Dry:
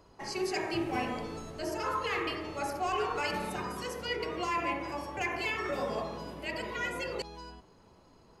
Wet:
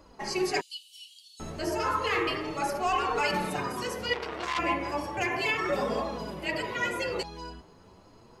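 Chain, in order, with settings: 0.60–1.40 s: rippled Chebyshev high-pass 2.9 kHz, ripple 6 dB; flange 0.33 Hz, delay 3.4 ms, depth 9.5 ms, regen -13%; 4.13–4.59 s: transformer saturation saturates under 3.1 kHz; trim +8 dB

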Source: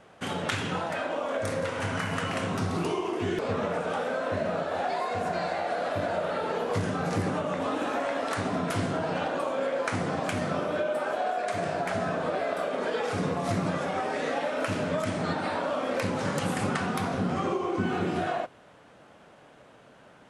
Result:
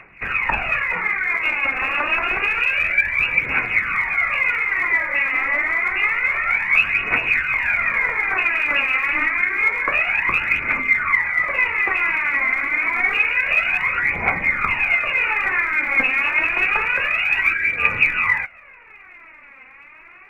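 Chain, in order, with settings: frequency inversion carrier 2.7 kHz; phaser 0.28 Hz, delay 3.9 ms, feedback 66%; trim +7 dB

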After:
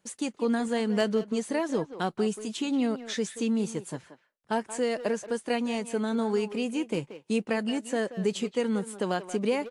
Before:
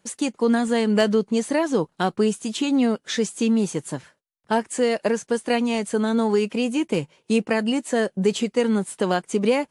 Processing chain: speakerphone echo 180 ms, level -11 dB; trim -7 dB

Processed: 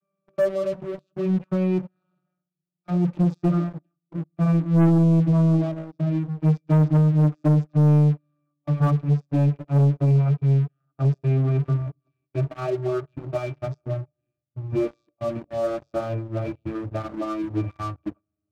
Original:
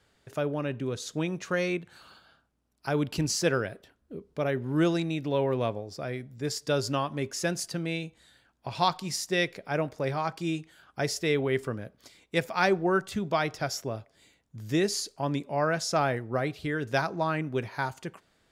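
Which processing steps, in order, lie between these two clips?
vocoder on a note that slides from G3, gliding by -11 st; pitch-class resonator D, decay 0.12 s; waveshaping leveller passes 3; trim +7 dB

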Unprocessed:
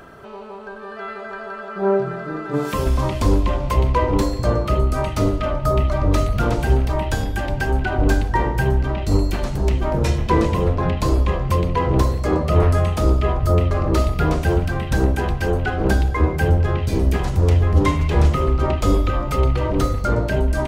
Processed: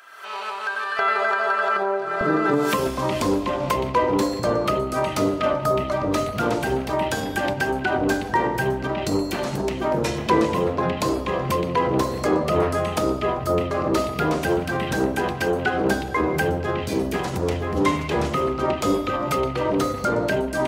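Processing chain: recorder AGC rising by 50 dB/s; high-pass 1.5 kHz 12 dB/octave, from 0.99 s 640 Hz, from 2.21 s 200 Hz

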